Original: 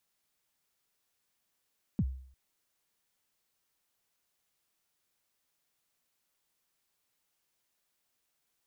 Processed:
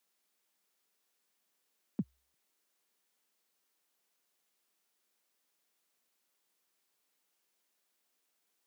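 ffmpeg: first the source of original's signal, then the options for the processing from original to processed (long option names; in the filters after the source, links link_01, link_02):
-f lavfi -i "aevalsrc='0.0708*pow(10,-3*t/0.57)*sin(2*PI*(250*0.052/log(65/250)*(exp(log(65/250)*min(t,0.052)/0.052)-1)+65*max(t-0.052,0)))':duration=0.35:sample_rate=44100"
-af "highpass=frequency=180:width=0.5412,highpass=frequency=180:width=1.3066,equalizer=frequency=410:width=2.2:gain=2.5"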